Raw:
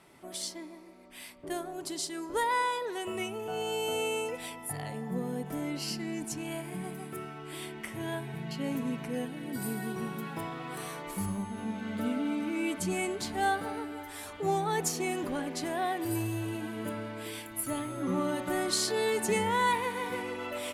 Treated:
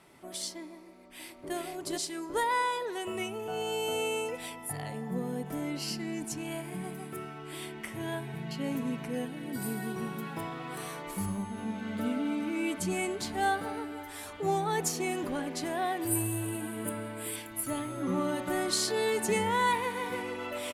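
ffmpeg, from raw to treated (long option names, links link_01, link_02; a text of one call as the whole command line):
ffmpeg -i in.wav -filter_complex "[0:a]asplit=2[link_01][link_02];[link_02]afade=type=in:start_time=0.76:duration=0.01,afade=type=out:start_time=1.54:duration=0.01,aecho=0:1:430|860|1290|1720|2150:0.891251|0.311938|0.109178|0.0382124|0.0133743[link_03];[link_01][link_03]amix=inputs=2:normalize=0,asettb=1/sr,asplit=3[link_04][link_05][link_06];[link_04]atrim=end=16.074[link_07];[link_05]atrim=start=16.07:end=17.36,asetpts=PTS-STARTPTS,afade=type=in:duration=0.004:curve=qsin,afade=type=out:start_time=1.286:duration=0.004:curve=qsin,highshelf=frequency=7200:width_type=q:width=3:gain=7[link_08];[link_06]atrim=start=17.356[link_09];[link_07][link_08]acrossfade=duration=0.004:curve1=hsin:curve2=qsin[link_10];[link_10][link_09]acrossfade=duration=0.004:curve1=qsin:curve2=hsin" out.wav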